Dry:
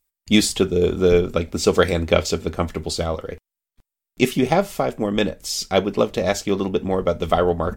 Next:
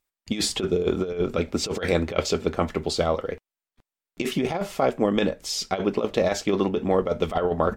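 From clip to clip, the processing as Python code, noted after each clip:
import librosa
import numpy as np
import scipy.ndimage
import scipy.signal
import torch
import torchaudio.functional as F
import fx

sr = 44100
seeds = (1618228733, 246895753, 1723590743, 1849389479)

y = fx.lowpass(x, sr, hz=3300.0, slope=6)
y = fx.low_shelf(y, sr, hz=150.0, db=-10.0)
y = fx.over_compress(y, sr, threshold_db=-21.0, ratio=-0.5)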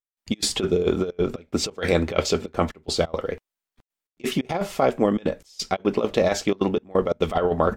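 y = fx.step_gate(x, sr, bpm=177, pattern='..xx.xxxxxxxx.xx', floor_db=-24.0, edge_ms=4.5)
y = y * librosa.db_to_amplitude(2.0)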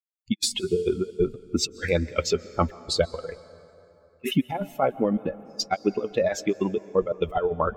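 y = fx.bin_expand(x, sr, power=2.0)
y = fx.rider(y, sr, range_db=4, speed_s=0.5)
y = fx.rev_plate(y, sr, seeds[0], rt60_s=3.3, hf_ratio=0.55, predelay_ms=115, drr_db=18.5)
y = y * librosa.db_to_amplitude(2.5)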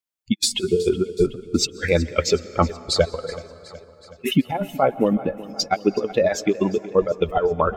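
y = fx.echo_feedback(x, sr, ms=372, feedback_pct=57, wet_db=-18)
y = y * librosa.db_to_amplitude(4.5)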